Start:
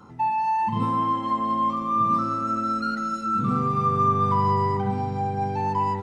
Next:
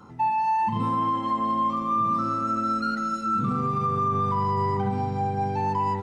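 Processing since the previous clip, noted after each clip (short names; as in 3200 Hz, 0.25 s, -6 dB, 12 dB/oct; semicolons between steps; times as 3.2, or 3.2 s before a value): limiter -17 dBFS, peak gain reduction 5.5 dB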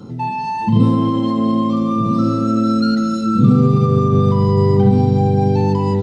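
ten-band EQ 125 Hz +10 dB, 250 Hz +7 dB, 500 Hz +8 dB, 1000 Hz -9 dB, 2000 Hz -5 dB, 4000 Hz +8 dB; gain +6.5 dB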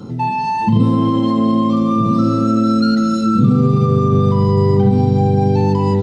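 compressor 2:1, threshold -15 dBFS, peak gain reduction 5.5 dB; gain +3.5 dB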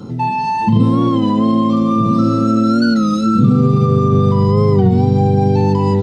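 record warp 33 1/3 rpm, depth 100 cents; gain +1 dB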